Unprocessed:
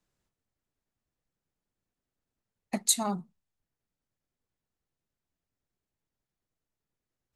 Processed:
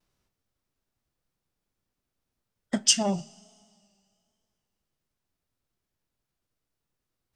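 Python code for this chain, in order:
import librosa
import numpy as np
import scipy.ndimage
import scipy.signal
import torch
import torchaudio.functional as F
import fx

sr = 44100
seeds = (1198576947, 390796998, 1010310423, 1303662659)

y = fx.rev_double_slope(x, sr, seeds[0], early_s=0.27, late_s=2.3, knee_db=-18, drr_db=15.0)
y = fx.formant_shift(y, sr, semitones=-5)
y = fx.vibrato(y, sr, rate_hz=1.2, depth_cents=52.0)
y = F.gain(torch.from_numpy(y), 4.5).numpy()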